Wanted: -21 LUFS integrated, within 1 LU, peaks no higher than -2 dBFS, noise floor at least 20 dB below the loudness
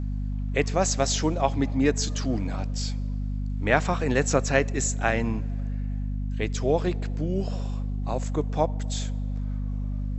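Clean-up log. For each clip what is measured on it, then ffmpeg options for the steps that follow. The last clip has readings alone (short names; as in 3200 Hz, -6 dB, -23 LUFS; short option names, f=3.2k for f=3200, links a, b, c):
hum 50 Hz; harmonics up to 250 Hz; hum level -26 dBFS; loudness -27.0 LUFS; peak -4.0 dBFS; loudness target -21.0 LUFS
-> -af "bandreject=f=50:t=h:w=6,bandreject=f=100:t=h:w=6,bandreject=f=150:t=h:w=6,bandreject=f=200:t=h:w=6,bandreject=f=250:t=h:w=6"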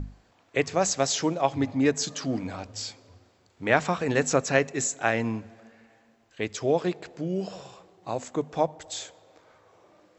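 hum none; loudness -27.5 LUFS; peak -5.0 dBFS; loudness target -21.0 LUFS
-> -af "volume=6.5dB,alimiter=limit=-2dB:level=0:latency=1"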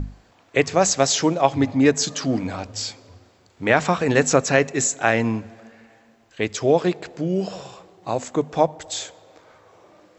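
loudness -21.5 LUFS; peak -2.0 dBFS; noise floor -57 dBFS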